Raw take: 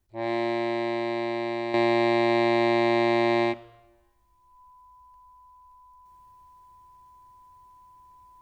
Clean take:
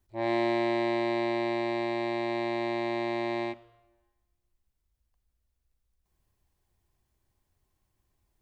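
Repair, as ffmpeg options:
ffmpeg -i in.wav -af "bandreject=frequency=1000:width=30,asetnsamples=nb_out_samples=441:pad=0,asendcmd='1.74 volume volume -8.5dB',volume=0dB" out.wav

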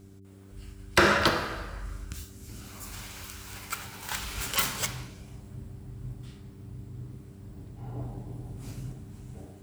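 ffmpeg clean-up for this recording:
ffmpeg -i in.wav -af "bandreject=frequency=97.3:width_type=h:width=4,bandreject=frequency=194.6:width_type=h:width=4,bandreject=frequency=291.9:width_type=h:width=4,bandreject=frequency=389.2:width_type=h:width=4" out.wav

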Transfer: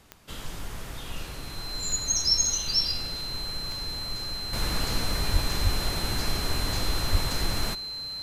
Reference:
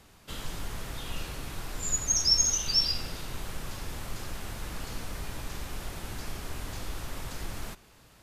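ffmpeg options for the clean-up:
ffmpeg -i in.wav -filter_complex "[0:a]adeclick=threshold=4,bandreject=frequency=4100:width=30,asplit=3[link_01][link_02][link_03];[link_01]afade=type=out:start_time=5.32:duration=0.02[link_04];[link_02]highpass=frequency=140:width=0.5412,highpass=frequency=140:width=1.3066,afade=type=in:start_time=5.32:duration=0.02,afade=type=out:start_time=5.44:duration=0.02[link_05];[link_03]afade=type=in:start_time=5.44:duration=0.02[link_06];[link_04][link_05][link_06]amix=inputs=3:normalize=0,asplit=3[link_07][link_08][link_09];[link_07]afade=type=out:start_time=5.63:duration=0.02[link_10];[link_08]highpass=frequency=140:width=0.5412,highpass=frequency=140:width=1.3066,afade=type=in:start_time=5.63:duration=0.02,afade=type=out:start_time=5.75:duration=0.02[link_11];[link_09]afade=type=in:start_time=5.75:duration=0.02[link_12];[link_10][link_11][link_12]amix=inputs=3:normalize=0,asplit=3[link_13][link_14][link_15];[link_13]afade=type=out:start_time=7.11:duration=0.02[link_16];[link_14]highpass=frequency=140:width=0.5412,highpass=frequency=140:width=1.3066,afade=type=in:start_time=7.11:duration=0.02,afade=type=out:start_time=7.23:duration=0.02[link_17];[link_15]afade=type=in:start_time=7.23:duration=0.02[link_18];[link_16][link_17][link_18]amix=inputs=3:normalize=0,asetnsamples=nb_out_samples=441:pad=0,asendcmd='4.53 volume volume -9dB',volume=0dB" out.wav

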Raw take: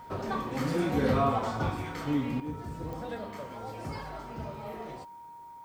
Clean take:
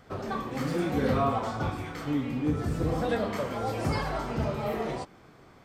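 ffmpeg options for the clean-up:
ffmpeg -i in.wav -af "adeclick=threshold=4,bandreject=frequency=940:width=30,agate=range=-21dB:threshold=-40dB,asetnsamples=nb_out_samples=441:pad=0,asendcmd='2.4 volume volume 10dB',volume=0dB" out.wav

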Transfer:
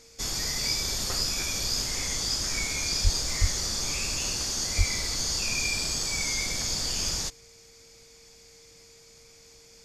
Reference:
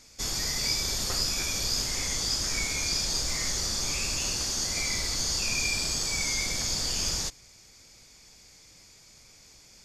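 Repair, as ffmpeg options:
ffmpeg -i in.wav -filter_complex "[0:a]bandreject=frequency=460:width=30,asplit=3[link_01][link_02][link_03];[link_01]afade=type=out:start_time=3.03:duration=0.02[link_04];[link_02]highpass=frequency=140:width=0.5412,highpass=frequency=140:width=1.3066,afade=type=in:start_time=3.03:duration=0.02,afade=type=out:start_time=3.15:duration=0.02[link_05];[link_03]afade=type=in:start_time=3.15:duration=0.02[link_06];[link_04][link_05][link_06]amix=inputs=3:normalize=0,asplit=3[link_07][link_08][link_09];[link_07]afade=type=out:start_time=3.4:duration=0.02[link_10];[link_08]highpass=frequency=140:width=0.5412,highpass=frequency=140:width=1.3066,afade=type=in:start_time=3.4:duration=0.02,afade=type=out:start_time=3.52:duration=0.02[link_11];[link_09]afade=type=in:start_time=3.52:duration=0.02[link_12];[link_10][link_11][link_12]amix=inputs=3:normalize=0,asplit=3[link_13][link_14][link_15];[link_13]afade=type=out:start_time=4.77:duration=0.02[link_16];[link_14]highpass=frequency=140:width=0.5412,highpass=frequency=140:width=1.3066,afade=type=in:start_time=4.77:duration=0.02,afade=type=out:start_time=4.89:duration=0.02[link_17];[link_15]afade=type=in:start_time=4.89:duration=0.02[link_18];[link_16][link_17][link_18]amix=inputs=3:normalize=0" out.wav

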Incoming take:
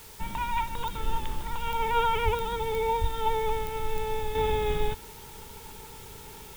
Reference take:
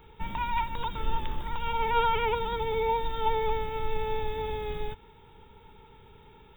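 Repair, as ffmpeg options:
ffmpeg -i in.wav -filter_complex "[0:a]adeclick=threshold=4,asplit=3[link_01][link_02][link_03];[link_01]afade=type=out:start_time=2.24:duration=0.02[link_04];[link_02]highpass=frequency=140:width=0.5412,highpass=frequency=140:width=1.3066,afade=type=in:start_time=2.24:duration=0.02,afade=type=out:start_time=2.36:duration=0.02[link_05];[link_03]afade=type=in:start_time=2.36:duration=0.02[link_06];[link_04][link_05][link_06]amix=inputs=3:normalize=0,asplit=3[link_07][link_08][link_09];[link_07]afade=type=out:start_time=3:duration=0.02[link_10];[link_08]highpass=frequency=140:width=0.5412,highpass=frequency=140:width=1.3066,afade=type=in:start_time=3:duration=0.02,afade=type=out:start_time=3.12:duration=0.02[link_11];[link_09]afade=type=in:start_time=3.12:duration=0.02[link_12];[link_10][link_11][link_12]amix=inputs=3:normalize=0,afwtdn=0.0035,asetnsamples=nb_out_samples=441:pad=0,asendcmd='4.35 volume volume -6.5dB',volume=0dB" out.wav

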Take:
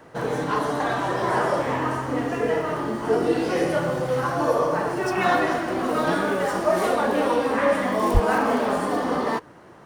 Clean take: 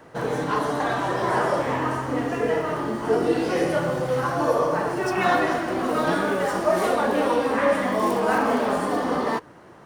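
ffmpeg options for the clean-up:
ffmpeg -i in.wav -filter_complex "[0:a]asplit=3[link_01][link_02][link_03];[link_01]afade=type=out:start_time=8.13:duration=0.02[link_04];[link_02]highpass=frequency=140:width=0.5412,highpass=frequency=140:width=1.3066,afade=type=in:start_time=8.13:duration=0.02,afade=type=out:start_time=8.25:duration=0.02[link_05];[link_03]afade=type=in:start_time=8.25:duration=0.02[link_06];[link_04][link_05][link_06]amix=inputs=3:normalize=0" out.wav

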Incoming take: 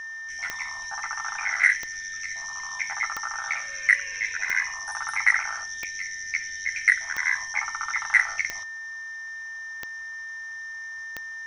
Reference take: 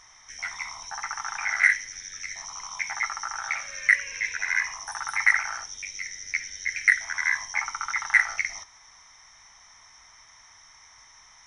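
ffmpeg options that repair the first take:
ffmpeg -i in.wav -af "adeclick=threshold=4,bandreject=frequency=1800:width=30" out.wav

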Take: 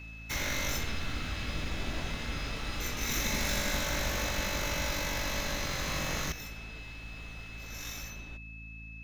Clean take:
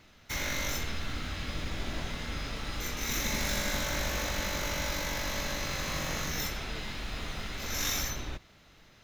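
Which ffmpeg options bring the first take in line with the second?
ffmpeg -i in.wav -af "bandreject=frequency=55:width_type=h:width=4,bandreject=frequency=110:width_type=h:width=4,bandreject=frequency=165:width_type=h:width=4,bandreject=frequency=220:width_type=h:width=4,bandreject=frequency=275:width_type=h:width=4,bandreject=frequency=2600:width=30,asetnsamples=nb_out_samples=441:pad=0,asendcmd='6.32 volume volume 11dB',volume=0dB" out.wav

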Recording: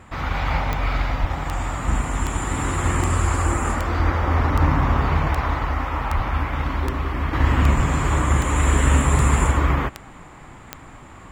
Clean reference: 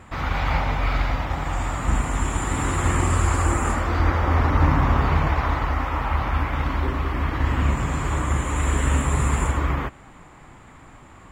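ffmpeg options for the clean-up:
ffmpeg -i in.wav -filter_complex "[0:a]adeclick=threshold=4,asplit=3[link_01][link_02][link_03];[link_01]afade=type=out:start_time=1.2:duration=0.02[link_04];[link_02]highpass=frequency=140:width=0.5412,highpass=frequency=140:width=1.3066,afade=type=in:start_time=1.2:duration=0.02,afade=type=out:start_time=1.32:duration=0.02[link_05];[link_03]afade=type=in:start_time=1.32:duration=0.02[link_06];[link_04][link_05][link_06]amix=inputs=3:normalize=0,asplit=3[link_07][link_08][link_09];[link_07]afade=type=out:start_time=6.15:duration=0.02[link_10];[link_08]highpass=frequency=140:width=0.5412,highpass=frequency=140:width=1.3066,afade=type=in:start_time=6.15:duration=0.02,afade=type=out:start_time=6.27:duration=0.02[link_11];[link_09]afade=type=in:start_time=6.27:duration=0.02[link_12];[link_10][link_11][link_12]amix=inputs=3:normalize=0,asplit=3[link_13][link_14][link_15];[link_13]afade=type=out:start_time=7.76:duration=0.02[link_16];[link_14]highpass=frequency=140:width=0.5412,highpass=frequency=140:width=1.3066,afade=type=in:start_time=7.76:duration=0.02,afade=type=out:start_time=7.88:duration=0.02[link_17];[link_15]afade=type=in:start_time=7.88:duration=0.02[link_18];[link_16][link_17][link_18]amix=inputs=3:normalize=0,asetnsamples=nb_out_samples=441:pad=0,asendcmd='7.33 volume volume -4dB',volume=0dB" out.wav

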